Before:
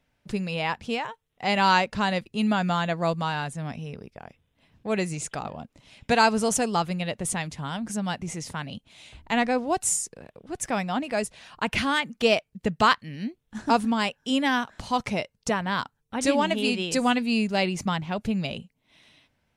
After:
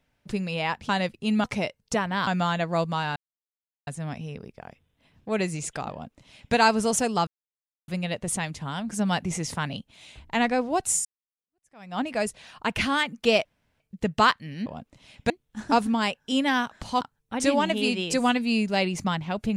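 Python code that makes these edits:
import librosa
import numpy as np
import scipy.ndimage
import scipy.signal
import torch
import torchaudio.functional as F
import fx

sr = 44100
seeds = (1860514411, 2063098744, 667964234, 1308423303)

y = fx.edit(x, sr, fx.cut(start_s=0.89, length_s=1.12),
    fx.insert_silence(at_s=3.45, length_s=0.71),
    fx.duplicate(start_s=5.49, length_s=0.64, to_s=13.28),
    fx.insert_silence(at_s=6.85, length_s=0.61),
    fx.clip_gain(start_s=7.96, length_s=0.78, db=4.0),
    fx.fade_in_span(start_s=10.02, length_s=0.94, curve='exp'),
    fx.insert_room_tone(at_s=12.42, length_s=0.35),
    fx.move(start_s=14.99, length_s=0.83, to_s=2.56), tone=tone)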